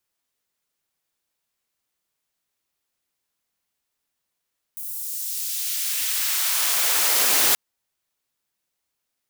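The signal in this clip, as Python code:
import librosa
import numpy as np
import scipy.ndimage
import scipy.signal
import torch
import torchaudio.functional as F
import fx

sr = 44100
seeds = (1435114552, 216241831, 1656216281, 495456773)

y = fx.riser_noise(sr, seeds[0], length_s=2.78, colour='white', kind='highpass', start_hz=12000.0, end_hz=220.0, q=0.72, swell_db=12.0, law='exponential')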